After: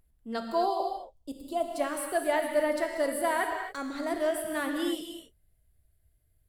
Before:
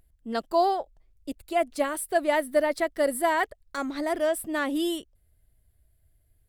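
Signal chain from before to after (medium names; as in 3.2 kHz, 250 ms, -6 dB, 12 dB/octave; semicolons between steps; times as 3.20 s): 0.62–1.76 s: high-order bell 1.9 kHz -16 dB 1 oct; gated-style reverb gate 300 ms flat, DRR 2.5 dB; trim -5 dB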